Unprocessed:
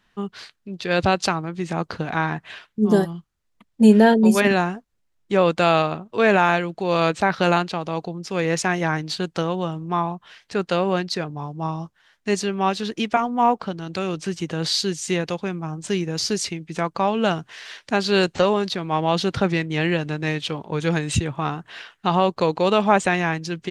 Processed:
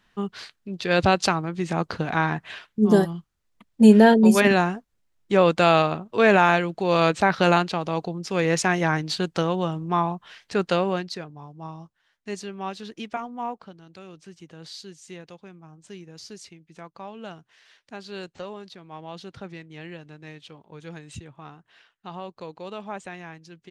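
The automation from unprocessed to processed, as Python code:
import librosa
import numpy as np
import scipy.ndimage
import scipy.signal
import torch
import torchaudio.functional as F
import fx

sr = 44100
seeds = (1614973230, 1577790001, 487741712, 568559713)

y = fx.gain(x, sr, db=fx.line((10.71, 0.0), (11.32, -11.0), (13.23, -11.0), (13.94, -18.0)))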